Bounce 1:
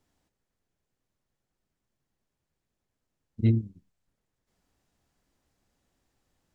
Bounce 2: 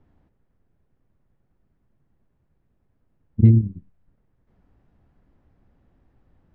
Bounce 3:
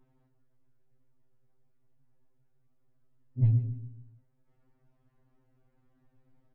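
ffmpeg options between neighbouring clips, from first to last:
-af "acompressor=threshold=0.0562:ratio=6,lowpass=1800,lowshelf=f=300:g=10.5,volume=2.37"
-filter_complex "[0:a]asplit=2[s0][s1];[s1]adelay=146,lowpass=f=1600:p=1,volume=0.282,asplit=2[s2][s3];[s3]adelay=146,lowpass=f=1600:p=1,volume=0.42,asplit=2[s4][s5];[s5]adelay=146,lowpass=f=1600:p=1,volume=0.42,asplit=2[s6][s7];[s7]adelay=146,lowpass=f=1600:p=1,volume=0.42[s8];[s0][s2][s4][s6][s8]amix=inputs=5:normalize=0,asoftclip=type=tanh:threshold=0.501,afftfilt=real='re*2.45*eq(mod(b,6),0)':imag='im*2.45*eq(mod(b,6),0)':win_size=2048:overlap=0.75,volume=0.596"

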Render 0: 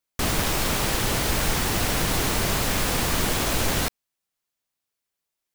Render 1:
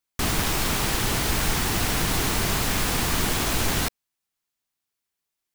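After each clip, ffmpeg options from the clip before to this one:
-af "equalizer=f=550:t=o:w=0.43:g=-5.5"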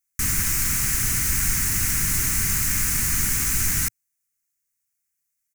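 -af "firequalizer=gain_entry='entry(110,0);entry(580,-23);entry(1400,-3);entry(2100,1);entry(3400,-13);entry(6300,7)':delay=0.05:min_phase=1"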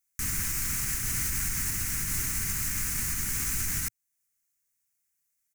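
-af "alimiter=limit=0.106:level=0:latency=1:release=329"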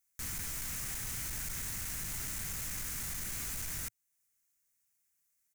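-af "asoftclip=type=tanh:threshold=0.0141"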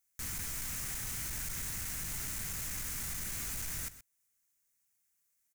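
-af "aecho=1:1:125:0.188"

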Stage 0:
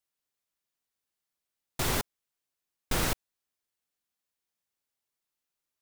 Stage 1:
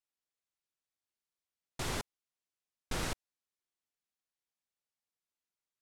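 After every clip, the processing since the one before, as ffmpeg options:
-af "lowpass=9600,volume=0.447"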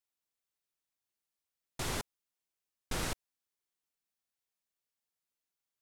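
-af "highshelf=f=10000:g=5.5"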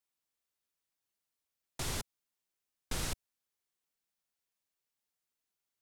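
-filter_complex "[0:a]acrossover=split=150|3000[s0][s1][s2];[s1]acompressor=threshold=0.00631:ratio=2.5[s3];[s0][s3][s2]amix=inputs=3:normalize=0,volume=1.12"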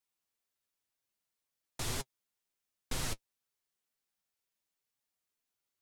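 -af "flanger=delay=7.1:depth=3.6:regen=37:speed=2:shape=triangular,volume=1.58"

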